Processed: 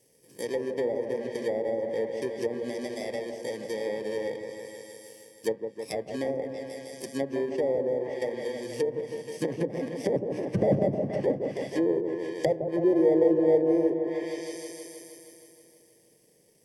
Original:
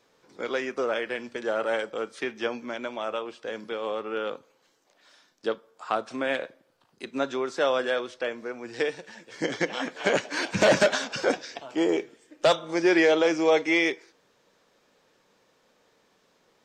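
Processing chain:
samples in bit-reversed order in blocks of 32 samples
octave-band graphic EQ 125/500/1,000/2,000/8,000 Hz +10/+8/−9/+3/+11 dB
on a send: echo whose low-pass opens from repeat to repeat 158 ms, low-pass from 750 Hz, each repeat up 1 octave, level −6 dB
on the sum: treble cut that deepens with the level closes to 720 Hz, closed at −17.5 dBFS
level −3.5 dB

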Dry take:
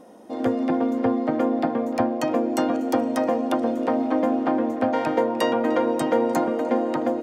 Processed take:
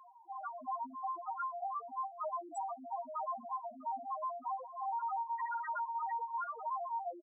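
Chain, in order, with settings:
slap from a distant wall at 110 metres, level −16 dB
gate on every frequency bin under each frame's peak −30 dB strong
downward compressor 2 to 1, threshold −24 dBFS, peak gain reduction 5.5 dB
tilt shelving filter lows −6 dB, about 840 Hz
reverb reduction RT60 1.2 s
octave-band graphic EQ 125/250/500/1,000/4,000 Hz −4/−12/−11/+8/−3 dB
flanger 0.98 Hz, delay 6.3 ms, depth 4.1 ms, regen −72%
spectral peaks only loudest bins 1
brickwall limiter −42.5 dBFS, peak gain reduction 10.5 dB
level +10.5 dB

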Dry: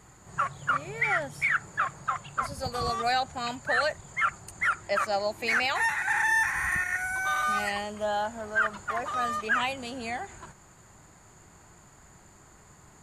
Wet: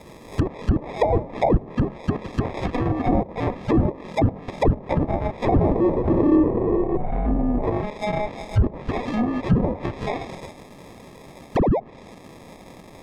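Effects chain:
meter weighting curve ITU-R 468
0:11.55–0:11.80: sound drawn into the spectrogram fall 670–4,600 Hz −22 dBFS
decimation without filtering 30×
treble cut that deepens with the level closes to 650 Hz, closed at −21 dBFS
0:06.36–0:07.63: high-frequency loss of the air 340 metres
level +5 dB

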